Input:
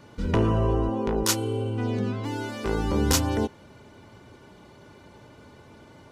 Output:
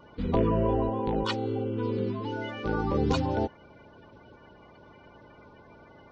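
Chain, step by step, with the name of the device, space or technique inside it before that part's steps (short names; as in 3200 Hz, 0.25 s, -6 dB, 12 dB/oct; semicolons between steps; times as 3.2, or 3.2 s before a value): clip after many re-uploads (LPF 4100 Hz 24 dB/oct; bin magnitudes rounded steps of 30 dB); gain -2 dB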